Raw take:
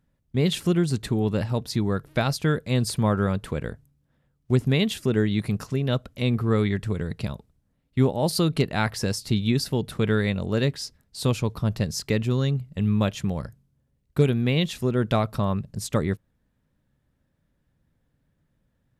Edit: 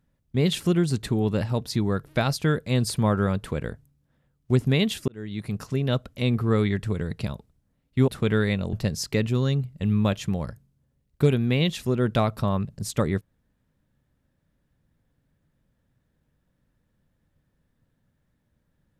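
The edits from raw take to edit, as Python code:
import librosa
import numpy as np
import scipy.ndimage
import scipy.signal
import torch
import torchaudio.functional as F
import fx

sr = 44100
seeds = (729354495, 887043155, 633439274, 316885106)

y = fx.edit(x, sr, fx.fade_in_span(start_s=5.08, length_s=0.69),
    fx.cut(start_s=8.08, length_s=1.77),
    fx.cut(start_s=10.5, length_s=1.19), tone=tone)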